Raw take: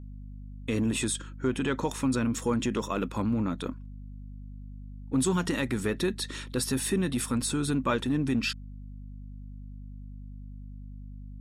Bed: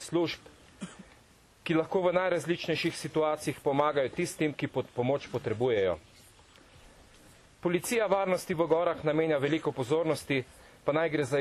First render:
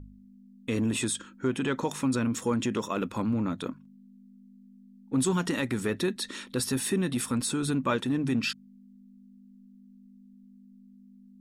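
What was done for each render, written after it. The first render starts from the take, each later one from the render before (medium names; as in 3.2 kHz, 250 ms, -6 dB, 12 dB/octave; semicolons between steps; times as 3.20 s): de-hum 50 Hz, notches 3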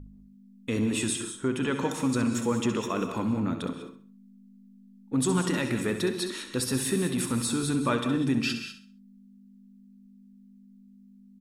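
on a send: feedback delay 66 ms, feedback 34%, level -10 dB; on the sum: gated-style reverb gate 220 ms rising, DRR 8 dB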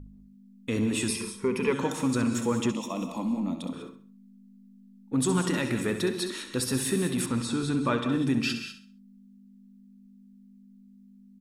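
1.08–1.73 s: rippled EQ curve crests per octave 0.86, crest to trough 15 dB; 2.71–3.73 s: static phaser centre 410 Hz, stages 6; 7.26–8.12 s: distance through air 69 m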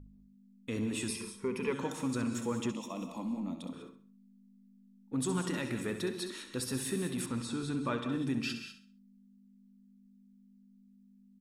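trim -7.5 dB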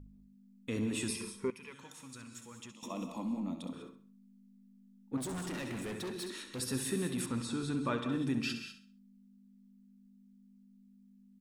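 1.50–2.83 s: amplifier tone stack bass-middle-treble 5-5-5; 5.17–6.60 s: hard clipper -37 dBFS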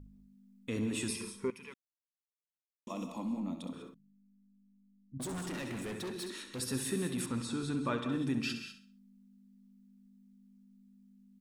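1.74–2.87 s: mute; 3.94–5.20 s: inverse Chebyshev low-pass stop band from 630 Hz, stop band 60 dB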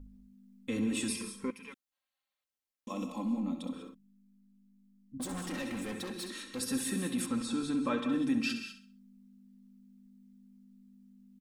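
comb 3.8 ms, depth 68%; 1.92–2.44 s: time-frequency box 530–4600 Hz +10 dB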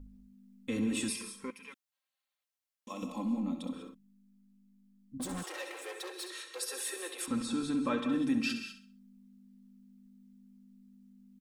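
1.09–3.03 s: bass shelf 470 Hz -8 dB; 5.43–7.28 s: steep high-pass 360 Hz 72 dB/octave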